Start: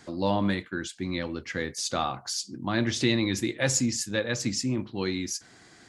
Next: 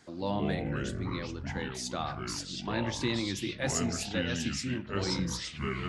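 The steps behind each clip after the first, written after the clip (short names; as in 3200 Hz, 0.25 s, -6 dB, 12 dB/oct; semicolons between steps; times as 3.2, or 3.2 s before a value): echoes that change speed 98 ms, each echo -5 st, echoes 3; gain -7 dB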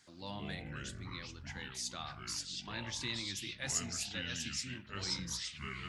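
passive tone stack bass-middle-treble 5-5-5; gain +4.5 dB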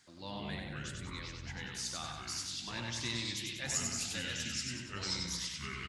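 feedback echo 95 ms, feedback 49%, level -4 dB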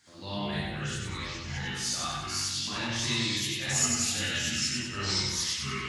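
non-linear reverb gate 90 ms rising, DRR -7.5 dB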